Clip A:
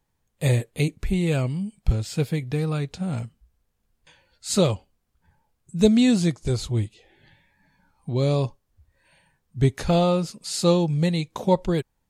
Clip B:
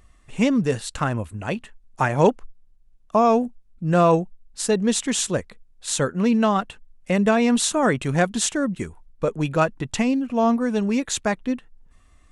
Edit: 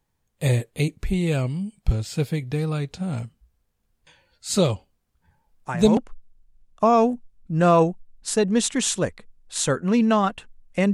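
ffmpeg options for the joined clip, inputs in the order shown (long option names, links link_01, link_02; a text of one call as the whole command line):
ffmpeg -i cue0.wav -i cue1.wav -filter_complex "[1:a]asplit=2[link_01][link_02];[0:a]apad=whole_dur=10.93,atrim=end=10.93,atrim=end=5.972[link_03];[link_02]atrim=start=2.288:end=7.25[link_04];[link_01]atrim=start=1.79:end=2.29,asetpts=PTS-STARTPTS,volume=-9dB,afade=type=in:duration=0.004:curve=hsin,afade=type=out:start_time=0.496:duration=0.004:curve=hsin,adelay=5470[link_05];[link_03][link_04]acrossfade=duration=0.004:curve1=hsin:curve2=hsin[link_06];[link_06][link_05]amix=inputs=2:normalize=0" out.wav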